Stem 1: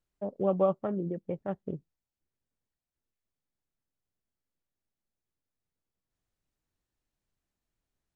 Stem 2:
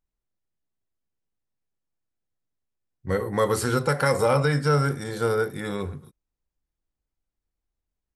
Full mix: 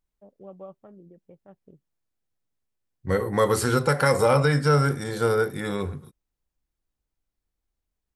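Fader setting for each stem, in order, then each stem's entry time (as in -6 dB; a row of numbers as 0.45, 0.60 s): -16.5, +1.5 dB; 0.00, 0.00 s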